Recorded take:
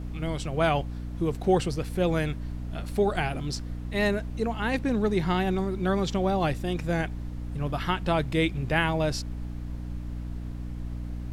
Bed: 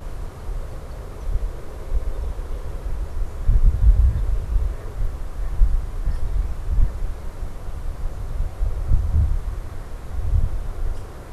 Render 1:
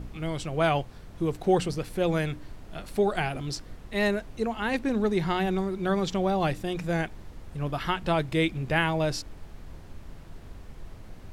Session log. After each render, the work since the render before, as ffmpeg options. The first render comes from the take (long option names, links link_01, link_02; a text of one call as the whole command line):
ffmpeg -i in.wav -af "bandreject=frequency=60:width_type=h:width=4,bandreject=frequency=120:width_type=h:width=4,bandreject=frequency=180:width_type=h:width=4,bandreject=frequency=240:width_type=h:width=4,bandreject=frequency=300:width_type=h:width=4" out.wav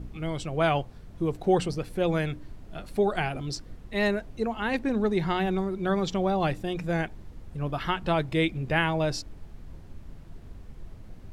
ffmpeg -i in.wav -af "afftdn=noise_reduction=6:noise_floor=-46" out.wav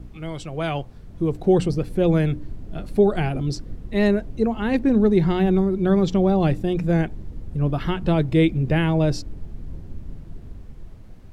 ffmpeg -i in.wav -filter_complex "[0:a]acrossover=split=480|1800[link_01][link_02][link_03];[link_01]dynaudnorm=framelen=280:gausssize=9:maxgain=10dB[link_04];[link_02]alimiter=limit=-24dB:level=0:latency=1[link_05];[link_04][link_05][link_03]amix=inputs=3:normalize=0" out.wav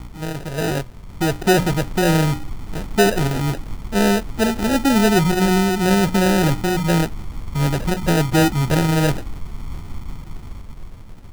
ffmpeg -i in.wav -filter_complex "[0:a]asplit=2[link_01][link_02];[link_02]volume=22.5dB,asoftclip=hard,volume=-22.5dB,volume=-4dB[link_03];[link_01][link_03]amix=inputs=2:normalize=0,acrusher=samples=40:mix=1:aa=0.000001" out.wav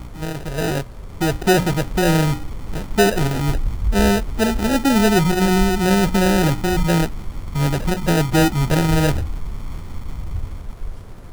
ffmpeg -i in.wav -i bed.wav -filter_complex "[1:a]volume=-6.5dB[link_01];[0:a][link_01]amix=inputs=2:normalize=0" out.wav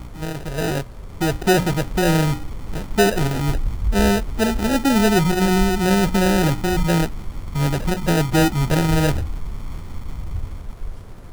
ffmpeg -i in.wav -af "volume=-1dB" out.wav